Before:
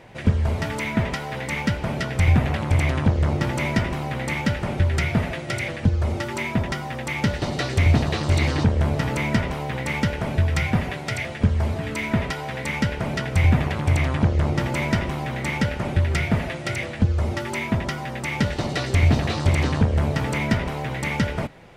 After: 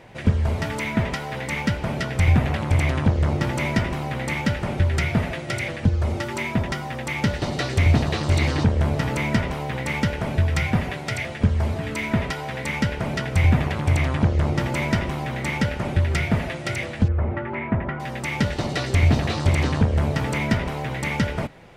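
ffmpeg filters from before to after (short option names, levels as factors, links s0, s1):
-filter_complex "[0:a]asettb=1/sr,asplit=3[s0][s1][s2];[s0]atrim=end=17.084[s3];[s1]atrim=start=17.08:end=18,asetpts=PTS-STARTPTS,afade=t=in:d=0.004:c=qsin,afade=t=out:st=0.916:d=0.004:c=qsin,lowpass=f=2100:w=0.5412,lowpass=f=2100:w=1.3066[s4];[s2]atrim=start=17.996[s5];[s3][s4]acrossfade=d=0.004:c1=hsin:c2=qsin[s6];[s6][s5]acrossfade=d=0.004:c1=qsin:c2=hsin"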